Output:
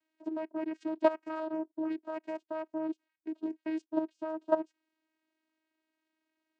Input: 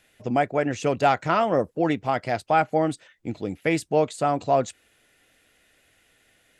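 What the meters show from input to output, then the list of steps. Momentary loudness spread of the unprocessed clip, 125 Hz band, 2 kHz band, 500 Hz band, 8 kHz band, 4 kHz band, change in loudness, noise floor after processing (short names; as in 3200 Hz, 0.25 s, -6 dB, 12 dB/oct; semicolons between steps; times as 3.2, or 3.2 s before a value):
8 LU, under -30 dB, -17.0 dB, -11.0 dB, under -30 dB, under -15 dB, -11.5 dB, under -85 dBFS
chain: transient shaper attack +4 dB, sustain -9 dB; level quantiser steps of 15 dB; vocoder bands 8, saw 316 Hz; gain -3.5 dB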